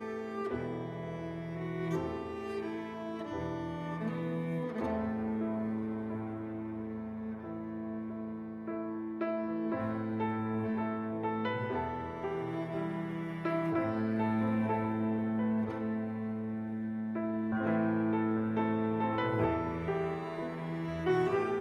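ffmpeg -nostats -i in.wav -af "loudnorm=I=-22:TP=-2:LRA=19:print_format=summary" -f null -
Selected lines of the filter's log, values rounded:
Input Integrated:    -34.7 LUFS
Input True Peak:     -17.9 dBTP
Input LRA:             5.2 LU
Input Threshold:     -44.7 LUFS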